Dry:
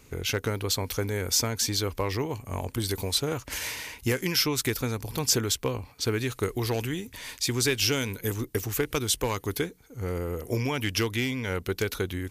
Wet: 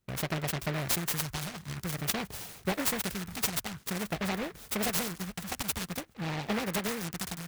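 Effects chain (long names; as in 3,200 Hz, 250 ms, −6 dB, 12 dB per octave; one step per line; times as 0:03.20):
gliding playback speed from 145% → 184%
noise gate with hold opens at −39 dBFS
all-pass phaser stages 2, 0.5 Hz, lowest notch 440–3,200 Hz
short delay modulated by noise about 1,400 Hz, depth 0.22 ms
level −3 dB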